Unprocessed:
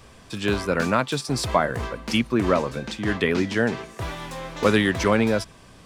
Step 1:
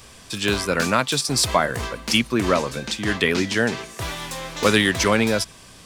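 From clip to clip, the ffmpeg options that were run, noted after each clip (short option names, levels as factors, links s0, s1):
-af "highshelf=f=2600:g=11.5"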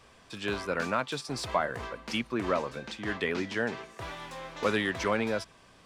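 -filter_complex "[0:a]asplit=2[s0][s1];[s1]highpass=f=720:p=1,volume=2.51,asoftclip=type=tanh:threshold=0.708[s2];[s0][s2]amix=inputs=2:normalize=0,lowpass=f=1100:p=1,volume=0.501,volume=0.398"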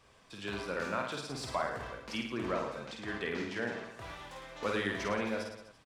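-af "aecho=1:1:50|107.5|173.6|249.7|337.1:0.631|0.398|0.251|0.158|0.1,volume=0.447"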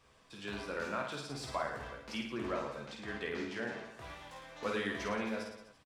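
-filter_complex "[0:a]asplit=2[s0][s1];[s1]adelay=14,volume=0.447[s2];[s0][s2]amix=inputs=2:normalize=0,volume=0.668"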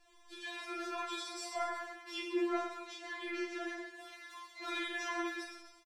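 -af "flanger=delay=18.5:depth=7.4:speed=1,aecho=1:1:126:0.299,afftfilt=real='re*4*eq(mod(b,16),0)':imag='im*4*eq(mod(b,16),0)':win_size=2048:overlap=0.75,volume=2.11"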